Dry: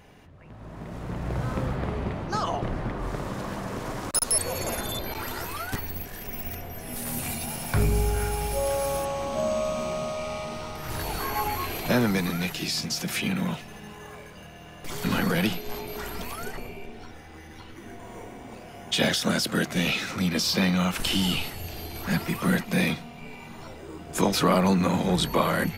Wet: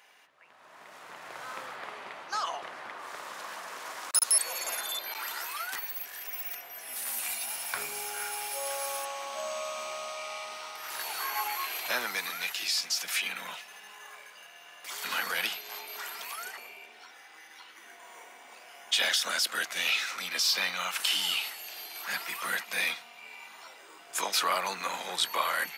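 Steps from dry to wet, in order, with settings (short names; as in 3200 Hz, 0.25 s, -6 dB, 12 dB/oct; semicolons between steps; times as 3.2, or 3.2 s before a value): HPF 1100 Hz 12 dB/oct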